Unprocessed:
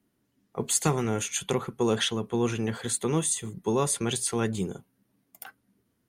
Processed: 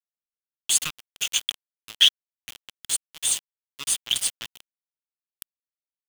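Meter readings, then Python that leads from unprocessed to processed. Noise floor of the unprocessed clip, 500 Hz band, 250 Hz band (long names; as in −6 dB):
−74 dBFS, −26.5 dB, below −25 dB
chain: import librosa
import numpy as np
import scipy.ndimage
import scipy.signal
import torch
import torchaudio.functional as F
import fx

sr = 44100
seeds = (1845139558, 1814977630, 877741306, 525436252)

y = scipy.signal.sosfilt(scipy.signal.cheby1(4, 1.0, [260.0, 1100.0], 'bandstop', fs=sr, output='sos'), x)
y = fx.tone_stack(y, sr, knobs='10-0-10')
y = np.where(np.abs(y) >= 10.0 ** (-31.5 / 20.0), y, 0.0)
y = fx.peak_eq(y, sr, hz=3100.0, db=13.0, octaves=0.51)
y = y * 10.0 ** (5.5 / 20.0)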